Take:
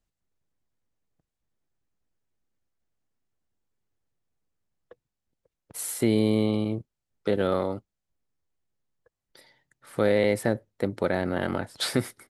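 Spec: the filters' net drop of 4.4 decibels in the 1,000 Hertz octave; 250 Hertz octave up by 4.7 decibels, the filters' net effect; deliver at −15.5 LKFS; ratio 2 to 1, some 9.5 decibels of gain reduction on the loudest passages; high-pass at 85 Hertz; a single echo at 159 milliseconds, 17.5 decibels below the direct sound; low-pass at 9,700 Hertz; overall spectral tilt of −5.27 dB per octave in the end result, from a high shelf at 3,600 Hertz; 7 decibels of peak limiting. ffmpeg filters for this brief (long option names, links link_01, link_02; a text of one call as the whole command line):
ffmpeg -i in.wav -af "highpass=85,lowpass=9700,equalizer=frequency=250:width_type=o:gain=6.5,equalizer=frequency=1000:width_type=o:gain=-6.5,highshelf=frequency=3600:gain=-4.5,acompressor=threshold=-32dB:ratio=2,alimiter=limit=-23.5dB:level=0:latency=1,aecho=1:1:159:0.133,volume=20dB" out.wav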